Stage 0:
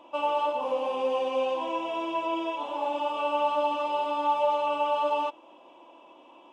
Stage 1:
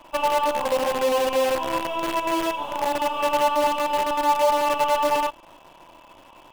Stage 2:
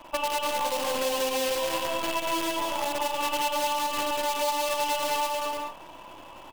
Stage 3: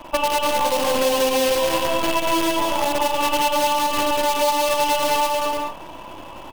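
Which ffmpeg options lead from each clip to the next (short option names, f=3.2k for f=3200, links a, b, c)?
-filter_complex "[0:a]lowshelf=f=110:g=9,acrossover=split=700[a][b];[a]acrusher=bits=6:dc=4:mix=0:aa=0.000001[c];[c][b]amix=inputs=2:normalize=0,volume=5dB"
-filter_complex "[0:a]aecho=1:1:190|304|372.4|413.4|438.1:0.631|0.398|0.251|0.158|0.1,acrossover=split=2800[a][b];[a]acompressor=threshold=-28dB:ratio=5[c];[c][b]amix=inputs=2:normalize=0,volume=1dB"
-af "lowshelf=f=450:g=5.5,bandreject=f=7.4k:w=28,volume=6.5dB"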